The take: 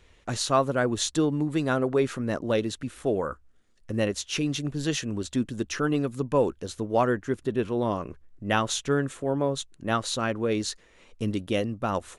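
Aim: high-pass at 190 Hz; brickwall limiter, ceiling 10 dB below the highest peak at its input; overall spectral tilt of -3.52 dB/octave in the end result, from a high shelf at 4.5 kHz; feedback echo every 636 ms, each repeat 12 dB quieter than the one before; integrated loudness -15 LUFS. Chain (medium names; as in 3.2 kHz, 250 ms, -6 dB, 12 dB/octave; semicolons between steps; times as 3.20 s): high-pass 190 Hz; treble shelf 4.5 kHz +5.5 dB; peak limiter -17 dBFS; feedback delay 636 ms, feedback 25%, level -12 dB; trim +14.5 dB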